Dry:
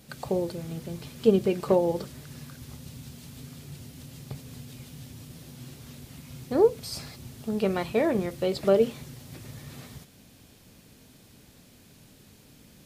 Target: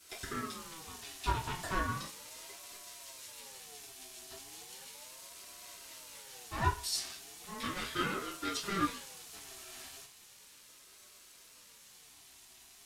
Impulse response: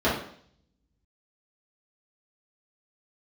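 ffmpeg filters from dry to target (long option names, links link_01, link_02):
-filter_complex "[0:a]aeval=exprs='clip(val(0),-1,0.0501)':channel_layout=same,aderivative[link_01];[1:a]atrim=start_sample=2205,asetrate=83790,aresample=44100[link_02];[link_01][link_02]afir=irnorm=-1:irlink=0,aeval=exprs='val(0)*sin(2*PI*680*n/s+680*0.25/0.36*sin(2*PI*0.36*n/s))':channel_layout=same,volume=1.5dB"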